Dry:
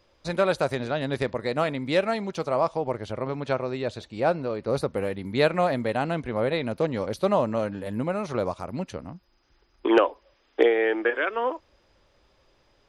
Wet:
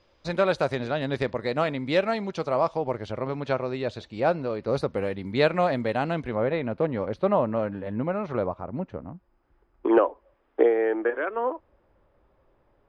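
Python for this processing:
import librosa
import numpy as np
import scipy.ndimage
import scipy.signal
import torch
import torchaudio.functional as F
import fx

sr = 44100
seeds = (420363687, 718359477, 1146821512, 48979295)

y = fx.lowpass(x, sr, hz=fx.steps((0.0, 5800.0), (6.35, 2200.0), (8.46, 1300.0)), slope=12)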